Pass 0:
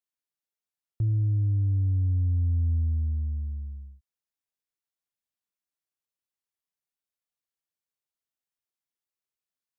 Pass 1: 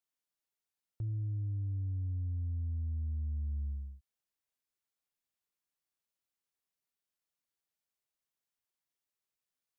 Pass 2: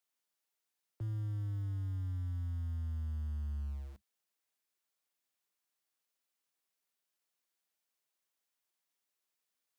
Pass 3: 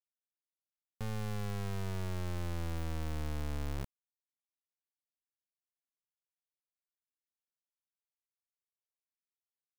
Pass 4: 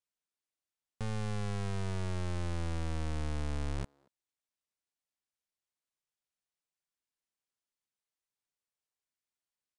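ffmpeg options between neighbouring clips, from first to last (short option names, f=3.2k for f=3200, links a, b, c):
-af "alimiter=level_in=8.5dB:limit=-24dB:level=0:latency=1:release=164,volume=-8.5dB"
-filter_complex "[0:a]lowshelf=f=220:g=-7,acrossover=split=120|210[a][b][c];[a]aeval=exprs='val(0)*gte(abs(val(0)),0.00158)':c=same[d];[d][b][c]amix=inputs=3:normalize=0,volume=4dB"
-af "acrusher=bits=4:dc=4:mix=0:aa=0.000001,volume=4.5dB"
-filter_complex "[0:a]aresample=22050,aresample=44100,asplit=2[a][b];[b]adelay=230,highpass=300,lowpass=3.4k,asoftclip=type=hard:threshold=-38.5dB,volume=-23dB[c];[a][c]amix=inputs=2:normalize=0,volume=2dB"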